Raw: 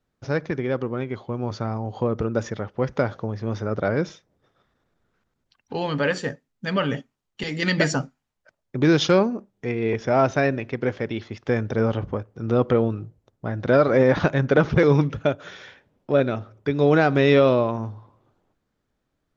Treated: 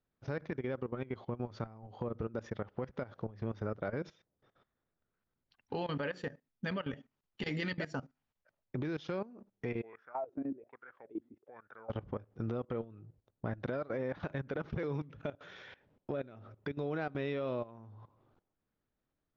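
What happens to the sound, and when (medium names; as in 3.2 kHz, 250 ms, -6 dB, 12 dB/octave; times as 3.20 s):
9.82–11.90 s: wah-wah 1.2 Hz 250–1400 Hz, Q 8.5
whole clip: compression 10:1, threshold -29 dBFS; low-pass 4.2 kHz 12 dB/octave; level held to a coarse grid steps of 17 dB; trim -1.5 dB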